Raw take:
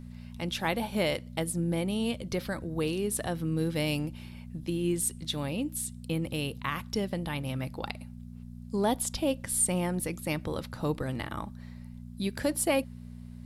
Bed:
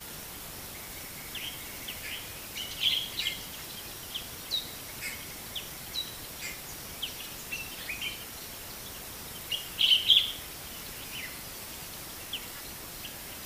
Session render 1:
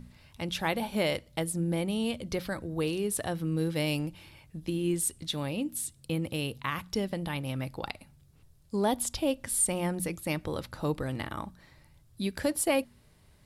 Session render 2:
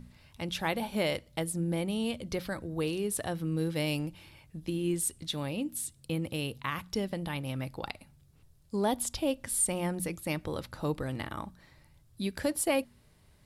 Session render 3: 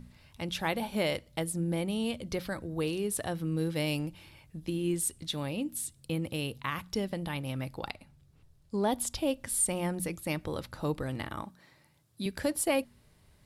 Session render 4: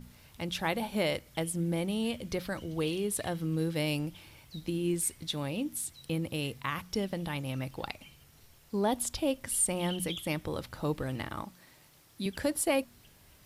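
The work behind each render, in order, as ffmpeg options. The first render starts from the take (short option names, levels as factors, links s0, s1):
-af "bandreject=f=60:t=h:w=4,bandreject=f=120:t=h:w=4,bandreject=f=180:t=h:w=4,bandreject=f=240:t=h:w=4"
-af "volume=0.841"
-filter_complex "[0:a]asettb=1/sr,asplit=3[s0][s1][s2];[s0]atrim=end=7.944[s3];[s1]atrim=start=7.94:end=8.92,asetpts=PTS-STARTPTS,afade=t=in:d=0.004:c=qsin,afade=t=out:st=0.976:d=0.004:c=qsin,highshelf=f=7300:g=-8.5[s4];[s2]atrim=start=8.916[s5];[s3][s4]acrossfade=d=0.004:c1=hsin:c2=qsin[s6];[s6][s5]acrossfade=d=0.004:c1=qsin:c2=hsin,asettb=1/sr,asplit=3[s7][s8][s9];[s7]atrim=end=11.434[s10];[s8]atrim=start=11.43:end=12.26,asetpts=PTS-STARTPTS,afade=t=in:d=0.004:c=qsin,afade=t=out:st=0.826:d=0.004:c=qsin,highpass=160[s11];[s9]atrim=start=12.256[s12];[s10][s11]acrossfade=d=0.004:c1=hsin:c2=qsin[s13];[s13][s12]acrossfade=d=0.004:c1=qsin:c2=hsin"
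-filter_complex "[1:a]volume=0.1[s0];[0:a][s0]amix=inputs=2:normalize=0"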